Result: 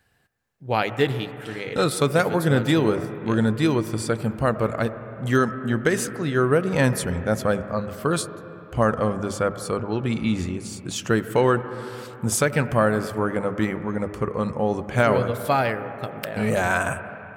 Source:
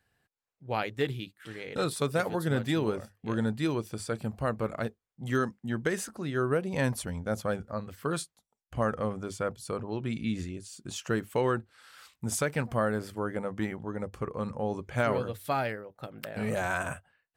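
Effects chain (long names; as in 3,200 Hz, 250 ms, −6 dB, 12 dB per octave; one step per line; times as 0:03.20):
on a send: low-pass filter 2,600 Hz 24 dB per octave + convolution reverb RT60 3.4 s, pre-delay 45 ms, DRR 11.5 dB
on the sum: level +8.5 dB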